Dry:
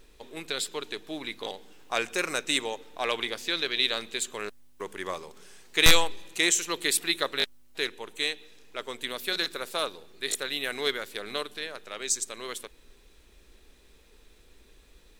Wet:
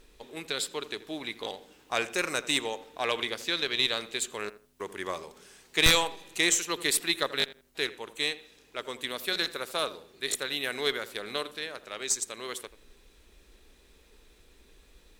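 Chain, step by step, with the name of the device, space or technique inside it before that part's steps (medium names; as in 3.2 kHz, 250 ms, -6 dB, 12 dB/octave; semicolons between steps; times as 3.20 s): rockabilly slapback (valve stage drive 10 dB, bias 0.25; tape echo 83 ms, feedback 28%, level -14 dB, low-pass 1.4 kHz)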